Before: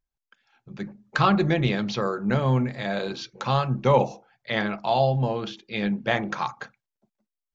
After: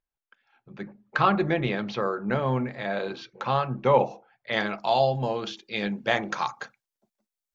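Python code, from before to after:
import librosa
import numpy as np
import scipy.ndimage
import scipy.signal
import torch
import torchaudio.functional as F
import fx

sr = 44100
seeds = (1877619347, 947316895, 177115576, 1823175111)

y = fx.bass_treble(x, sr, bass_db=-7, treble_db=fx.steps((0.0, -13.0), (4.51, 4.0)))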